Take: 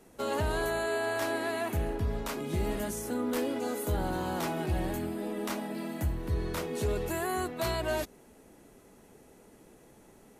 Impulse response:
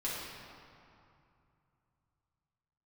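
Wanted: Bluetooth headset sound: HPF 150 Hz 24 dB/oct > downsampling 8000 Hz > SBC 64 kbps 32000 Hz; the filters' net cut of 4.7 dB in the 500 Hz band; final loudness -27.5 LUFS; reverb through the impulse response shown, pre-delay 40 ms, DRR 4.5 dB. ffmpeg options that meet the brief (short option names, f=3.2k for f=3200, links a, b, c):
-filter_complex "[0:a]equalizer=f=500:t=o:g=-6.5,asplit=2[a][b];[1:a]atrim=start_sample=2205,adelay=40[c];[b][c]afir=irnorm=-1:irlink=0,volume=-9dB[d];[a][d]amix=inputs=2:normalize=0,highpass=f=150:w=0.5412,highpass=f=150:w=1.3066,aresample=8000,aresample=44100,volume=7dB" -ar 32000 -c:a sbc -b:a 64k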